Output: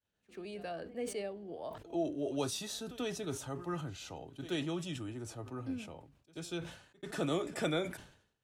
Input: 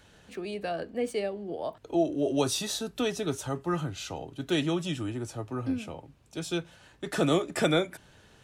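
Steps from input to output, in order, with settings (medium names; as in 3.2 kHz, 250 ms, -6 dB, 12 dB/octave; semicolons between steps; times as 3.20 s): expander -44 dBFS; pre-echo 87 ms -21 dB; decay stretcher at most 93 dB/s; trim -9 dB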